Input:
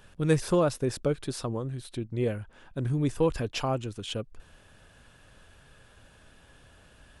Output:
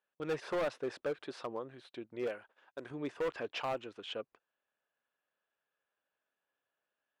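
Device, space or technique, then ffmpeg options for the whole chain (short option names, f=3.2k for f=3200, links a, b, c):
walkie-talkie: -filter_complex "[0:a]highpass=470,lowpass=2.7k,asoftclip=type=hard:threshold=-28dB,agate=range=-26dB:threshold=-55dB:ratio=16:detection=peak,asettb=1/sr,asplit=3[a][b][c];[a]atrim=end=2.274[d];[b]atrim=start=2.27:end=2.91,asetpts=PTS-STARTPTS,afade=t=in:d=0.004:c=qsin,afade=t=out:st=0.636:d=0.004:c=qsin,bass=f=250:g=-8,treble=f=4k:g=8[e];[c]atrim=start=2.906[f];[d][e]acrossfade=d=0.004:c1=hsin:c2=qsin[g];[g][f]acrossfade=d=0.004:c1=qsin:c2=hsin,volume=-2dB"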